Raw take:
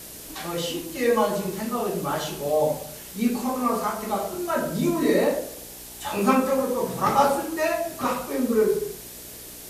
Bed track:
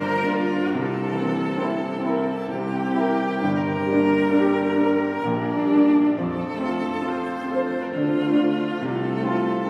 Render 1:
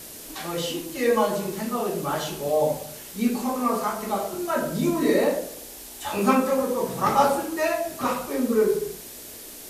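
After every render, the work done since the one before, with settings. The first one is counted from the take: de-hum 60 Hz, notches 3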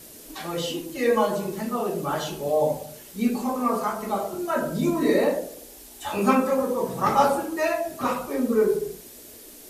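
denoiser 6 dB, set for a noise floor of -41 dBFS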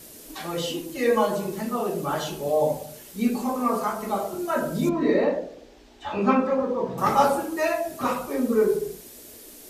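4.89–6.98 air absorption 190 m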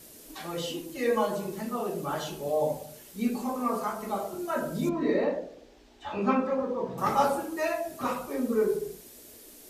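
gain -5 dB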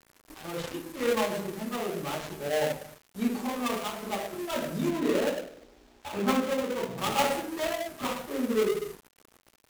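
switching dead time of 0.24 ms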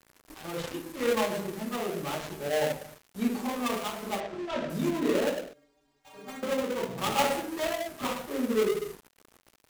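4.2–4.7 air absorption 140 m; 5.53–6.43 metallic resonator 140 Hz, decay 0.35 s, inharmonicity 0.008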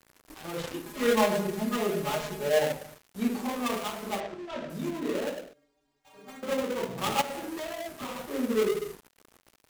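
0.85–2.59 comb 4.8 ms, depth 95%; 4.34–6.48 gain -4.5 dB; 7.21–8.33 compressor 12:1, threshold -31 dBFS

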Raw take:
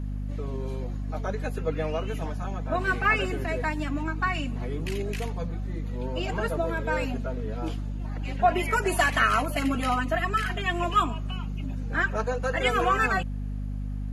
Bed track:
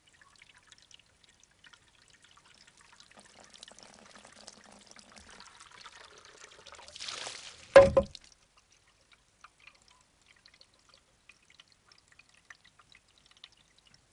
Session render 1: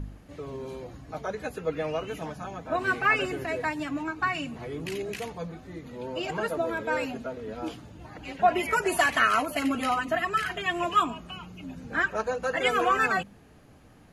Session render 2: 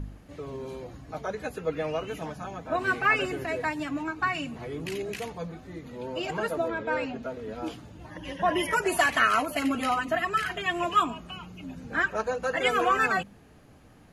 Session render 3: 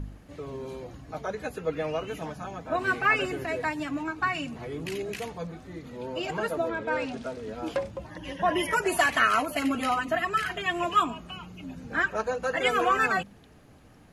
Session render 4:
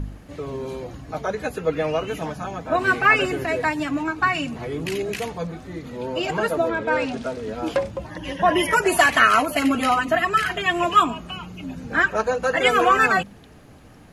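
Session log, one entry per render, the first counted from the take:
de-hum 50 Hz, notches 5
6.68–7.23 air absorption 110 m; 8.1–8.74 ripple EQ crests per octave 1.2, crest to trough 13 dB
add bed track -13.5 dB
gain +7 dB

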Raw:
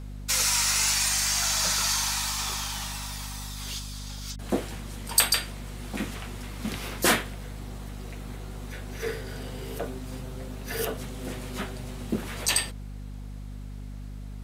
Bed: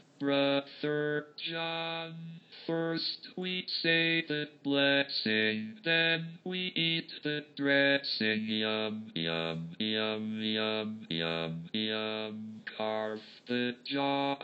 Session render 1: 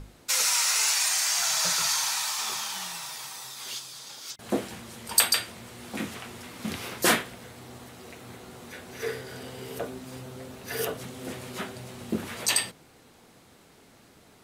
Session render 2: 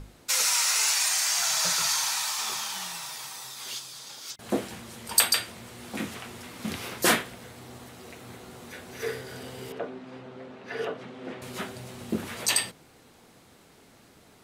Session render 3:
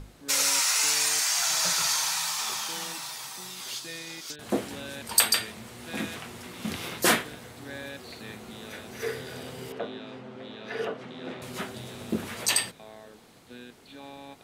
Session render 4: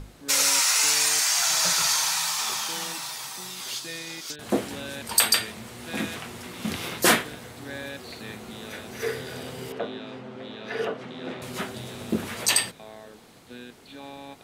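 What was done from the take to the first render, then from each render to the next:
notches 50/100/150/200/250/300 Hz
9.72–11.42 BPF 190–2700 Hz
add bed -14 dB
gain +3 dB; limiter -2 dBFS, peak gain reduction 2.5 dB

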